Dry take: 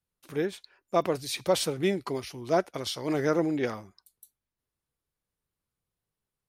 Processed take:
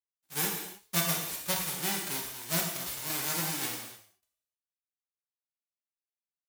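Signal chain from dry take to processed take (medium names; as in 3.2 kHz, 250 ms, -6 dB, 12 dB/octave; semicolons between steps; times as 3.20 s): formants flattened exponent 0.1; gate -48 dBFS, range -21 dB; gain riding within 4 dB 0.5 s; gated-style reverb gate 330 ms falling, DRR -1 dB; trim -7.5 dB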